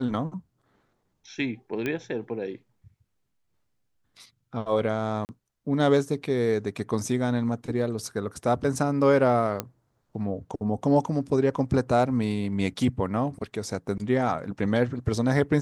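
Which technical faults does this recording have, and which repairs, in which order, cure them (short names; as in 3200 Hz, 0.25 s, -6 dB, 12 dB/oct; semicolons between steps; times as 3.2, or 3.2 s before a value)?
1.86 pop -16 dBFS
5.25–5.29 gap 39 ms
9.6 pop -12 dBFS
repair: de-click; interpolate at 5.25, 39 ms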